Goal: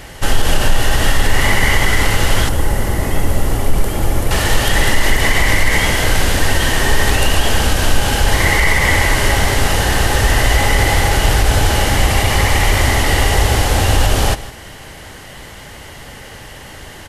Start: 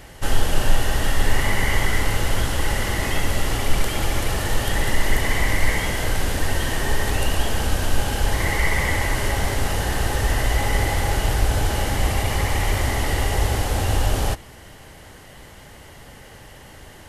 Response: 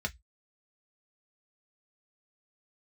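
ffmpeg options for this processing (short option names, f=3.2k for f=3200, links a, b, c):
-af "asetnsamples=n=441:p=0,asendcmd='2.49 equalizer g -10;4.31 equalizer g 3.5',equalizer=f=3.3k:w=0.38:g=2.5,aecho=1:1:154:0.141,alimiter=level_in=8.5dB:limit=-1dB:release=50:level=0:latency=1,volume=-1dB"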